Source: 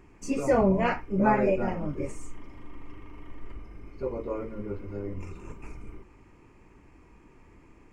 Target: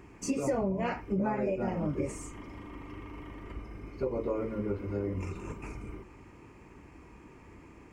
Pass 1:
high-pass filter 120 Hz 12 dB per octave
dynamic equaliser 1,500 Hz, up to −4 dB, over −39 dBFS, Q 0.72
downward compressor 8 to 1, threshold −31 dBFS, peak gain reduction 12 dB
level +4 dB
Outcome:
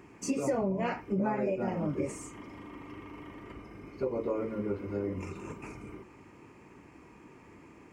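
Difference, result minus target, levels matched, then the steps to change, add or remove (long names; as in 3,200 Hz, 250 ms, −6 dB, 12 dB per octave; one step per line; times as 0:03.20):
125 Hz band −3.0 dB
change: high-pass filter 50 Hz 12 dB per octave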